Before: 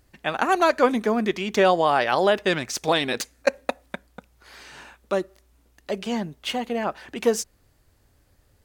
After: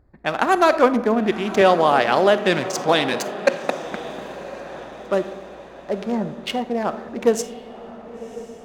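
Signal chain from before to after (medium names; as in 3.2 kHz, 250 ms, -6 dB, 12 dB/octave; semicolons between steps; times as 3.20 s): local Wiener filter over 15 samples; 1.61–3.84 s: high-pass 100 Hz 24 dB/octave; echo that smears into a reverb 1060 ms, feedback 52%, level -13.5 dB; reverberation RT60 1.1 s, pre-delay 5 ms, DRR 12 dB; tape noise reduction on one side only decoder only; trim +3.5 dB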